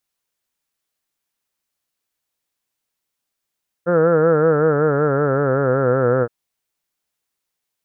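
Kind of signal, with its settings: formant-synthesis vowel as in heard, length 2.42 s, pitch 169 Hz, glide -5.5 st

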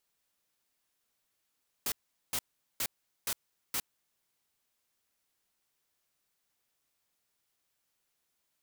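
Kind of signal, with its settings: noise bursts white, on 0.06 s, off 0.41 s, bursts 5, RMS -32.5 dBFS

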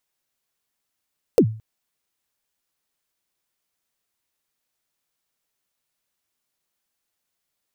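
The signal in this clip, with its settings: kick drum length 0.22 s, from 540 Hz, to 110 Hz, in 74 ms, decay 0.40 s, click on, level -7 dB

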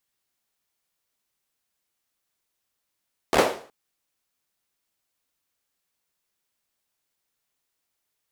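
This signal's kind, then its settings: hand clap length 0.37 s, bursts 5, apart 13 ms, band 510 Hz, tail 0.44 s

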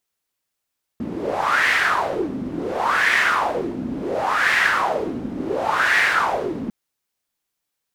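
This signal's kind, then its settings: wind-like swept noise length 5.70 s, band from 240 Hz, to 1900 Hz, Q 4.7, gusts 4, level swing 10 dB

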